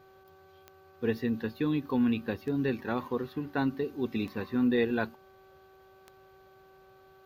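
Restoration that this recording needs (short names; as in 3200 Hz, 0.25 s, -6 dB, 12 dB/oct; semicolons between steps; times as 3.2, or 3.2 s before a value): de-click; de-hum 382.3 Hz, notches 4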